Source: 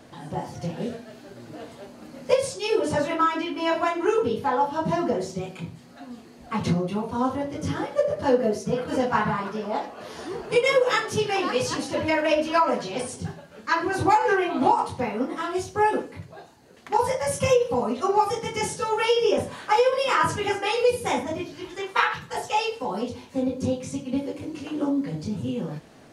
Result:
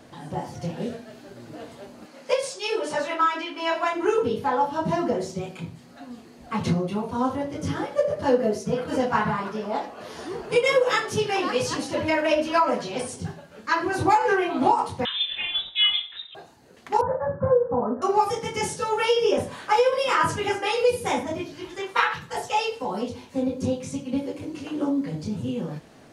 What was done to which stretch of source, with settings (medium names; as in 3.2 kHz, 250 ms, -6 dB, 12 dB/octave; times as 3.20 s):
2.05–3.93 s: frequency weighting A
15.05–16.35 s: frequency inversion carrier 3.8 kHz
17.01–18.02 s: steep low-pass 1.7 kHz 96 dB/octave